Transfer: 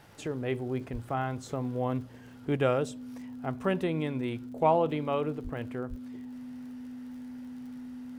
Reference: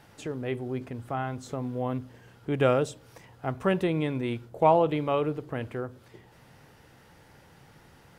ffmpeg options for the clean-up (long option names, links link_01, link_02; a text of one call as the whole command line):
ffmpeg -i in.wav -filter_complex "[0:a]adeclick=threshold=4,bandreject=frequency=250:width=30,asplit=3[link_01][link_02][link_03];[link_01]afade=type=out:start_time=0.92:duration=0.02[link_04];[link_02]highpass=frequency=140:width=0.5412,highpass=frequency=140:width=1.3066,afade=type=in:start_time=0.92:duration=0.02,afade=type=out:start_time=1.04:duration=0.02[link_05];[link_03]afade=type=in:start_time=1.04:duration=0.02[link_06];[link_04][link_05][link_06]amix=inputs=3:normalize=0,asplit=3[link_07][link_08][link_09];[link_07]afade=type=out:start_time=5.43:duration=0.02[link_10];[link_08]highpass=frequency=140:width=0.5412,highpass=frequency=140:width=1.3066,afade=type=in:start_time=5.43:duration=0.02,afade=type=out:start_time=5.55:duration=0.02[link_11];[link_09]afade=type=in:start_time=5.55:duration=0.02[link_12];[link_10][link_11][link_12]amix=inputs=3:normalize=0,asplit=3[link_13][link_14][link_15];[link_13]afade=type=out:start_time=5.89:duration=0.02[link_16];[link_14]highpass=frequency=140:width=0.5412,highpass=frequency=140:width=1.3066,afade=type=in:start_time=5.89:duration=0.02,afade=type=out:start_time=6.01:duration=0.02[link_17];[link_15]afade=type=in:start_time=6.01:duration=0.02[link_18];[link_16][link_17][link_18]amix=inputs=3:normalize=0,asetnsamples=nb_out_samples=441:pad=0,asendcmd='2.57 volume volume 3.5dB',volume=0dB" out.wav